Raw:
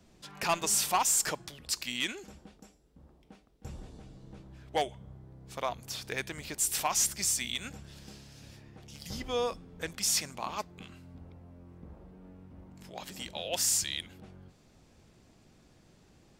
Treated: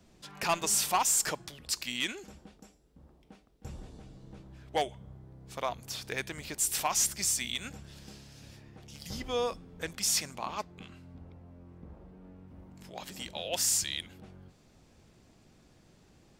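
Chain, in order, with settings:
0:10.39–0:12.48: high-shelf EQ 7,900 Hz −7.5 dB

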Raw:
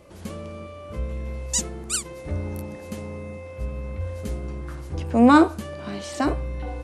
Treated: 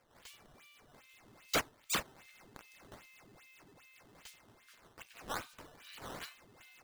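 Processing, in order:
four-pole ladder high-pass 2,100 Hz, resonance 25%
sample-and-hold swept by an LFO 11×, swing 160% 2.5 Hz
level −2 dB

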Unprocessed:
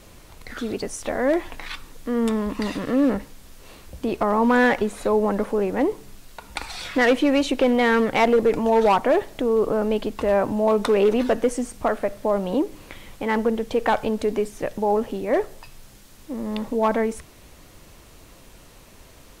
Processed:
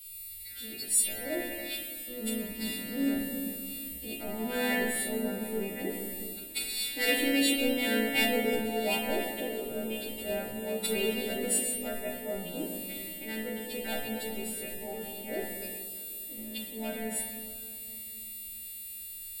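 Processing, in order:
every partial snapped to a pitch grid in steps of 2 semitones
first-order pre-emphasis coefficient 0.8
reversed playback
upward compression, threshold −32 dBFS
reversed playback
phaser with its sweep stopped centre 2,700 Hz, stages 4
hum removal 140.7 Hz, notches 14
on a send: feedback echo with a high-pass in the loop 1,052 ms, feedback 83%, high-pass 980 Hz, level −23.5 dB
on the sum: rectangular room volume 190 cubic metres, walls hard, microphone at 0.5 metres
multiband upward and downward expander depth 70%

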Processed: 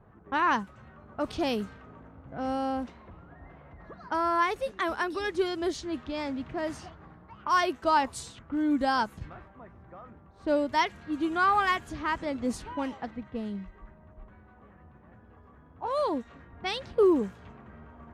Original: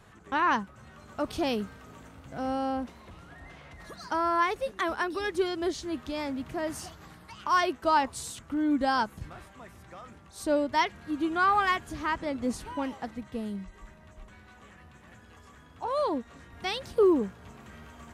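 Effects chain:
low-pass that shuts in the quiet parts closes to 880 Hz, open at −26 dBFS

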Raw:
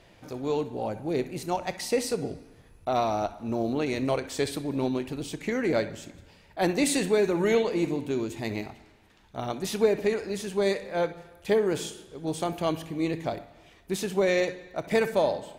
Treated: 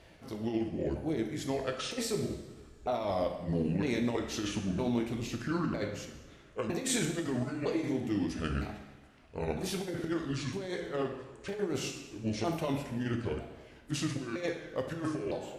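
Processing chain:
pitch shifter swept by a sawtooth −8 semitones, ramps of 957 ms
compressor whose output falls as the input rises −28 dBFS, ratio −0.5
coupled-rooms reverb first 0.9 s, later 2.6 s, DRR 4.5 dB
level −4 dB

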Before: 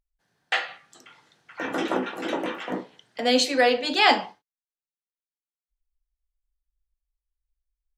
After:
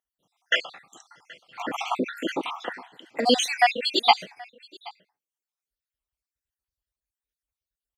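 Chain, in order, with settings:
time-frequency cells dropped at random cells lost 61%
high-pass filter 110 Hz 12 dB per octave
single-tap delay 776 ms −23.5 dB
level +5 dB

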